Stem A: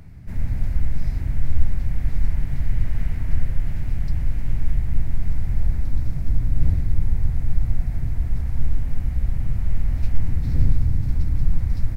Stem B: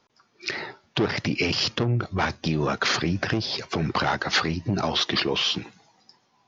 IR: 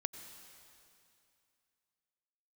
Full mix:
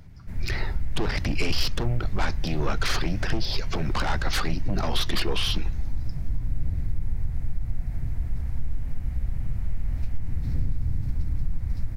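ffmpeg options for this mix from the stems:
-filter_complex "[0:a]acompressor=threshold=-14dB:ratio=4,volume=-4.5dB[link_01];[1:a]aeval=exprs='0.316*sin(PI/2*2.51*val(0)/0.316)':channel_layout=same,volume=-13.5dB[link_02];[link_01][link_02]amix=inputs=2:normalize=0"

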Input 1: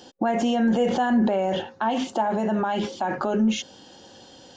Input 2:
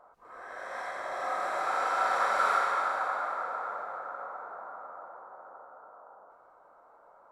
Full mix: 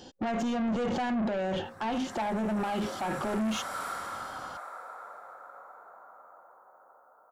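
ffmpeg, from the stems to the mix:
ffmpeg -i stem1.wav -i stem2.wav -filter_complex "[0:a]lowshelf=frequency=130:gain=12,volume=-3dB[link_01];[1:a]equalizer=frequency=3700:width_type=o:width=2.6:gain=-10,crystalizer=i=7.5:c=0,adelay=1350,volume=-9.5dB[link_02];[link_01][link_02]amix=inputs=2:normalize=0,asoftclip=type=tanh:threshold=-27dB" out.wav

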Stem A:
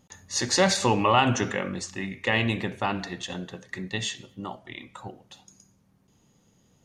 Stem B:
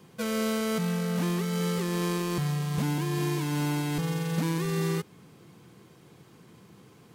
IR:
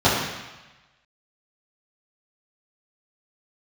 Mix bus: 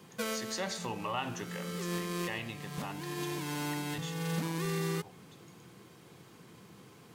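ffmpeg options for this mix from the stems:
-filter_complex "[0:a]volume=-14dB,asplit=2[link_01][link_02];[1:a]acompressor=threshold=-30dB:ratio=3,volume=1.5dB[link_03];[link_02]apad=whole_len=315288[link_04];[link_03][link_04]sidechaincompress=threshold=-47dB:ratio=8:attack=41:release=298[link_05];[link_01][link_05]amix=inputs=2:normalize=0,lowshelf=frequency=400:gain=-4,bandreject=frequency=72.71:width_type=h:width=4,bandreject=frequency=145.42:width_type=h:width=4,bandreject=frequency=218.13:width_type=h:width=4,bandreject=frequency=290.84:width_type=h:width=4,bandreject=frequency=363.55:width_type=h:width=4,bandreject=frequency=436.26:width_type=h:width=4,bandreject=frequency=508.97:width_type=h:width=4,bandreject=frequency=581.68:width_type=h:width=4,bandreject=frequency=654.39:width_type=h:width=4,bandreject=frequency=727.1:width_type=h:width=4,bandreject=frequency=799.81:width_type=h:width=4,bandreject=frequency=872.52:width_type=h:width=4,bandreject=frequency=945.23:width_type=h:width=4,bandreject=frequency=1017.94:width_type=h:width=4"

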